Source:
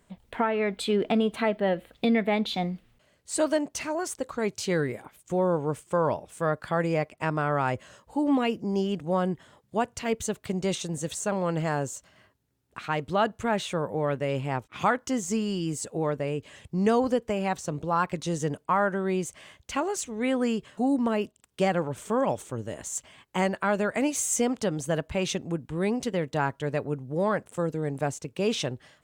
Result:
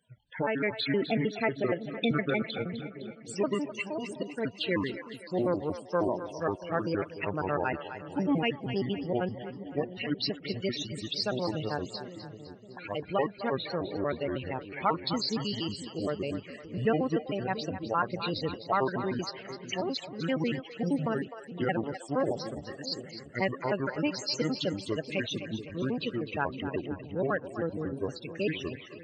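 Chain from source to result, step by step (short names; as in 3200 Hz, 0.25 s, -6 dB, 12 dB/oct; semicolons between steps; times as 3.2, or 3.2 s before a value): trilling pitch shifter -7.5 st, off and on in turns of 78 ms; de-esser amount 75%; weighting filter D; loudest bins only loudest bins 32; envelope phaser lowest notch 350 Hz, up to 4000 Hz, full sweep at -22.5 dBFS; on a send: split-band echo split 460 Hz, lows 0.684 s, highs 0.255 s, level -11 dB; on the sum: gain -2 dB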